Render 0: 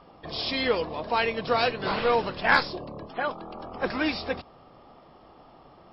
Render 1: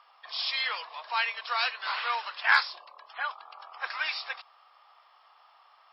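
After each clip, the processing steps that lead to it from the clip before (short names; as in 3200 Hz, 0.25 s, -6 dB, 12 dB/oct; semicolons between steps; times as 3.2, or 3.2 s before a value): HPF 1000 Hz 24 dB/oct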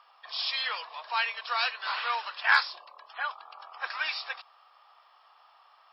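notch 2100 Hz, Q 19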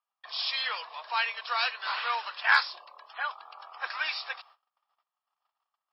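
gate -55 dBFS, range -32 dB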